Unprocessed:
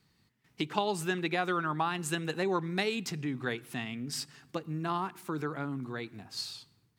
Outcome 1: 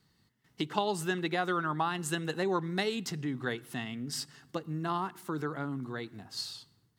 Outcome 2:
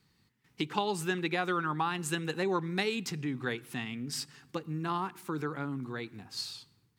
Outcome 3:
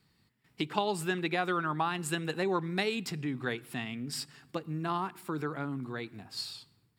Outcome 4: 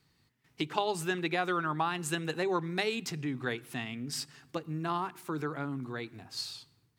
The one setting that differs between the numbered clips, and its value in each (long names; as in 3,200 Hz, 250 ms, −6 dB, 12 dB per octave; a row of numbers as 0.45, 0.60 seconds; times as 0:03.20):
notch filter, centre frequency: 2,400, 650, 6,200, 200 Hertz